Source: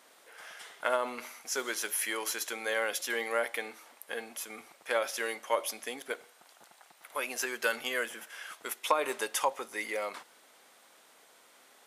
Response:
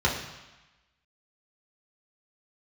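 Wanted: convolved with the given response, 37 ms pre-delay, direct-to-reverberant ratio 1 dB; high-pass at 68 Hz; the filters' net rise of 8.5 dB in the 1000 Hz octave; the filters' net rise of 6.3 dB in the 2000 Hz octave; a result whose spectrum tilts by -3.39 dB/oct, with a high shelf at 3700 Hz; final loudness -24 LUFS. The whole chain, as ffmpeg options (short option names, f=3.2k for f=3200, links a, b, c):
-filter_complex "[0:a]highpass=68,equalizer=f=1k:t=o:g=8.5,equalizer=f=2k:t=o:g=3,highshelf=f=3.7k:g=8,asplit=2[a][b];[1:a]atrim=start_sample=2205,adelay=37[c];[b][c]afir=irnorm=-1:irlink=0,volume=-14.5dB[d];[a][d]amix=inputs=2:normalize=0,volume=1dB"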